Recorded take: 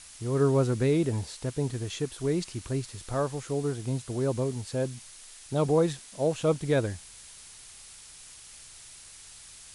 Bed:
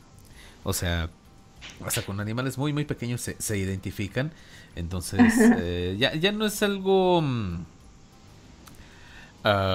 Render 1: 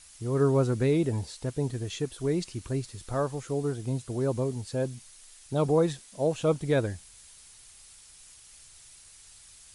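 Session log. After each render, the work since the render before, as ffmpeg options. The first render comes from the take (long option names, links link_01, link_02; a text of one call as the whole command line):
ffmpeg -i in.wav -af "afftdn=noise_reduction=6:noise_floor=-49" out.wav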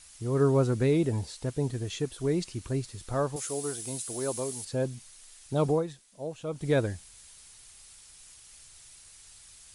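ffmpeg -i in.wav -filter_complex "[0:a]asettb=1/sr,asplit=3[link_01][link_02][link_03];[link_01]atrim=end=3.364[link_04];[link_02]atrim=start=3.36:end=4.65,asetpts=PTS-STARTPTS,afade=type=in:duration=0.004:curve=qsin,afade=type=out:start_time=1.286:duration=0.004:curve=qsin,aemphasis=mode=production:type=riaa[link_05];[link_03]atrim=start=4.646[link_06];[link_04][link_05]acrossfade=duration=0.004:curve1=hsin:curve2=qsin[link_07];[link_07][link_06]acrossfade=duration=0.004:curve1=qsin:curve2=hsin,asplit=3[link_08][link_09][link_10];[link_08]atrim=end=5.84,asetpts=PTS-STARTPTS,afade=type=out:start_time=5.7:duration=0.14:silence=0.316228[link_11];[link_09]atrim=start=5.84:end=6.52,asetpts=PTS-STARTPTS,volume=-10dB[link_12];[link_10]atrim=start=6.52,asetpts=PTS-STARTPTS,afade=type=in:duration=0.14:silence=0.316228[link_13];[link_11][link_12][link_13]concat=n=3:v=0:a=1" out.wav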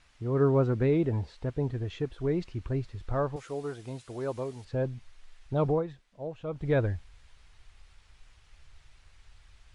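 ffmpeg -i in.wav -af "lowpass=2400,asubboost=boost=3.5:cutoff=96" out.wav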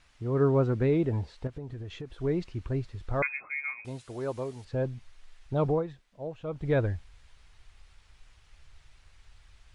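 ffmpeg -i in.wav -filter_complex "[0:a]asettb=1/sr,asplit=3[link_01][link_02][link_03];[link_01]atrim=end=1.474[link_04];[link_02]atrim=start=1.47:end=2.12,asetpts=PTS-STARTPTS,afade=type=in:duration=0.004:curve=qsin,afade=type=out:start_time=0.646:duration=0.004:curve=qsin,acompressor=threshold=-35dB:ratio=6:attack=3.2:release=140:knee=1:detection=peak[link_05];[link_03]atrim=start=2.116[link_06];[link_04][link_05]acrossfade=duration=0.004:curve1=hsin:curve2=qsin[link_07];[link_07][link_06]acrossfade=duration=0.004:curve1=qsin:curve2=hsin,asettb=1/sr,asplit=3[link_08][link_09][link_10];[link_08]atrim=end=3.224[link_11];[link_09]atrim=start=3.22:end=3.85,asetpts=PTS-STARTPTS,afade=type=in:duration=0.004:curve=qsin,afade=type=out:start_time=0.626:duration=0.004:curve=qsin,lowpass=frequency=2200:width_type=q:width=0.5098,lowpass=frequency=2200:width_type=q:width=0.6013,lowpass=frequency=2200:width_type=q:width=0.9,lowpass=frequency=2200:width_type=q:width=2.563,afreqshift=-2600[link_12];[link_10]atrim=start=3.846[link_13];[link_11][link_12]acrossfade=duration=0.004:curve1=hsin:curve2=qsin[link_14];[link_14][link_13]acrossfade=duration=0.004:curve1=qsin:curve2=hsin" out.wav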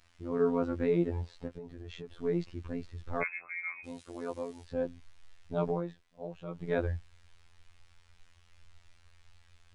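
ffmpeg -i in.wav -af "afftfilt=real='hypot(re,im)*cos(PI*b)':imag='0':win_size=2048:overlap=0.75" out.wav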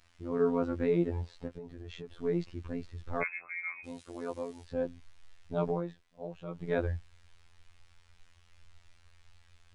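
ffmpeg -i in.wav -af anull out.wav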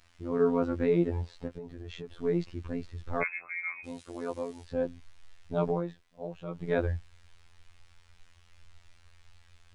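ffmpeg -i in.wav -af "volume=2.5dB" out.wav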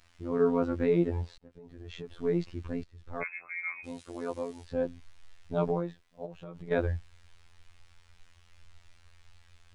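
ffmpeg -i in.wav -filter_complex "[0:a]asplit=3[link_01][link_02][link_03];[link_01]afade=type=out:start_time=6.25:duration=0.02[link_04];[link_02]acompressor=threshold=-38dB:ratio=6:attack=3.2:release=140:knee=1:detection=peak,afade=type=in:start_time=6.25:duration=0.02,afade=type=out:start_time=6.7:duration=0.02[link_05];[link_03]afade=type=in:start_time=6.7:duration=0.02[link_06];[link_04][link_05][link_06]amix=inputs=3:normalize=0,asplit=3[link_07][link_08][link_09];[link_07]atrim=end=1.38,asetpts=PTS-STARTPTS,afade=type=out:start_time=1.376:duration=0.004:curve=hsin[link_10];[link_08]atrim=start=1.38:end=2.84,asetpts=PTS-STARTPTS,afade=type=in:duration=0.61,afade=type=out:start_time=1.456:duration=0.004:curve=hsin:silence=0.177828[link_11];[link_09]atrim=start=2.84,asetpts=PTS-STARTPTS,afade=type=in:duration=0.85:silence=0.177828[link_12];[link_10][link_11][link_12]concat=n=3:v=0:a=1" out.wav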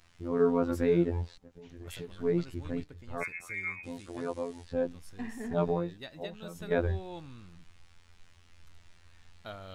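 ffmpeg -i in.wav -i bed.wav -filter_complex "[1:a]volume=-22dB[link_01];[0:a][link_01]amix=inputs=2:normalize=0" out.wav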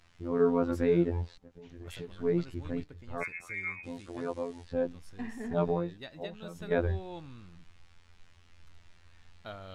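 ffmpeg -i in.wav -af "highshelf=frequency=8800:gain=-9.5" out.wav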